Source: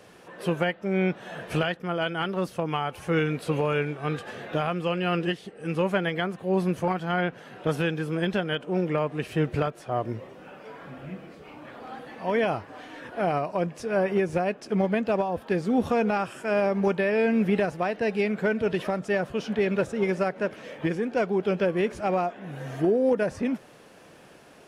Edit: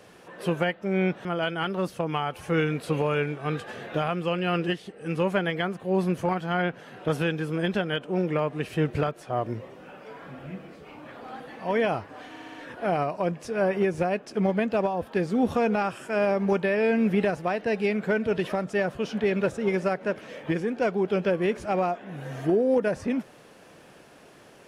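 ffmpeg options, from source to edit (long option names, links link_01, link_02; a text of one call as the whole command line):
ffmpeg -i in.wav -filter_complex "[0:a]asplit=6[link_01][link_02][link_03][link_04][link_05][link_06];[link_01]atrim=end=1.252[link_07];[link_02]atrim=start=1.838:end=12.952[link_08];[link_03]atrim=start=12.888:end=12.952[link_09];[link_04]atrim=start=12.888:end=12.952[link_10];[link_05]atrim=start=12.888:end=12.952[link_11];[link_06]atrim=start=12.888[link_12];[link_07][link_08]acrossfade=duration=0.004:curve1=hsin:curve2=hsin[link_13];[link_13][link_09]acrossfade=duration=0.004:curve1=hsin:curve2=hsin[link_14];[link_14][link_10]acrossfade=duration=0.004:curve1=hsin:curve2=hsin[link_15];[link_15][link_11]acrossfade=duration=0.004:curve1=hsin:curve2=hsin[link_16];[link_16][link_12]acrossfade=duration=0.004:curve1=hsin:curve2=hsin" out.wav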